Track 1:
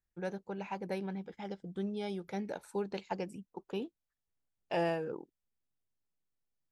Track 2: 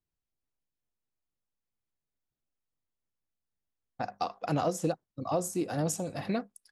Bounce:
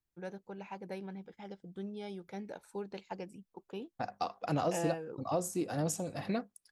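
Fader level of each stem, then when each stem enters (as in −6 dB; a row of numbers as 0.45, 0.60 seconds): −5.0, −3.0 decibels; 0.00, 0.00 seconds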